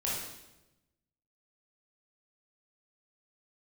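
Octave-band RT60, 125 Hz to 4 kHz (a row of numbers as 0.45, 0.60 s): 1.4, 1.2, 1.1, 0.90, 0.85, 0.85 s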